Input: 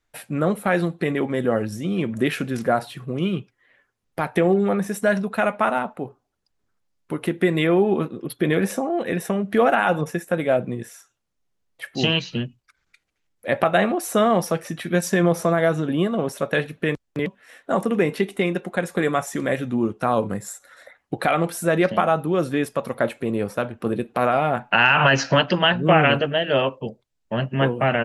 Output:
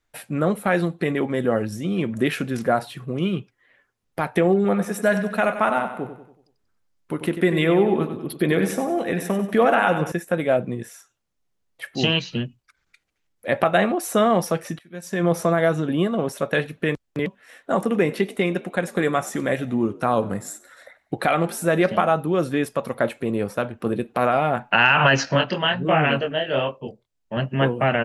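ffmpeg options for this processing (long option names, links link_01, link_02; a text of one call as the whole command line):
ffmpeg -i in.wav -filter_complex "[0:a]asettb=1/sr,asplit=3[link_01][link_02][link_03];[link_01]atrim=end=4.554[link_04];[link_02]atrim=start=4.55:end=10.12,asetpts=PTS-STARTPTS,afade=type=in:duration=0.004:curve=qsin,afade=type=out:start_time=5.566:duration=0.004:curve=qsin,aecho=1:1:94|188|282|376|470:0.316|0.142|0.064|0.0288|0.013,atrim=end_sample=245637[link_05];[link_03]atrim=start=10.116[link_06];[link_04][link_05]acrossfade=duration=0.004:curve1=hsin:curve2=qsin[link_07];[link_07][link_06]acrossfade=duration=0.004:curve1=qsin:curve2=hsin,asettb=1/sr,asplit=3[link_08][link_09][link_10];[link_08]atrim=end=17.724[link_11];[link_09]atrim=start=17.72:end=22.14,asetpts=PTS-STARTPTS,afade=type=in:duration=0.004:curve=qsin,afade=type=out:start_time=4.416:duration=0.004:curve=qsin,asplit=4[link_12][link_13][link_14][link_15];[link_13]adelay=97,afreqshift=54,volume=-21.5dB[link_16];[link_14]adelay=194,afreqshift=108,volume=-28.4dB[link_17];[link_15]adelay=291,afreqshift=162,volume=-35.4dB[link_18];[link_12][link_16][link_17][link_18]amix=inputs=4:normalize=0,atrim=end_sample=194922[link_19];[link_10]atrim=start=22.136[link_20];[link_11][link_19]acrossfade=duration=0.004:curve1=hsin:curve2=qsin[link_21];[link_21][link_20]acrossfade=duration=0.004:curve1=qsin:curve2=hsin,asettb=1/sr,asplit=3[link_22][link_23][link_24];[link_22]atrim=end=25.254[link_25];[link_23]atrim=start=25.25:end=27.37,asetpts=PTS-STARTPTS,afade=type=in:duration=0.004:curve=qsin,afade=type=out:start_time=2.116:duration=0.004:curve=qsin,flanger=delay=20:depth=5.7:speed=1.3[link_26];[link_24]atrim=start=27.366[link_27];[link_25][link_26]acrossfade=duration=0.004:curve1=hsin:curve2=qsin[link_28];[link_28][link_27]acrossfade=duration=0.004:curve1=qsin:curve2=hsin,asplit=2[link_29][link_30];[link_29]atrim=end=14.79,asetpts=PTS-STARTPTS,afade=type=out:start_time=14.786:duration=0.004:curve=hsin:silence=0.0668344[link_31];[link_30]atrim=start=14.79,asetpts=PTS-STARTPTS,afade=type=in:duration=0.53:curve=qua:silence=0.0668344[link_32];[link_31][link_32]concat=n=2:v=0:a=1" out.wav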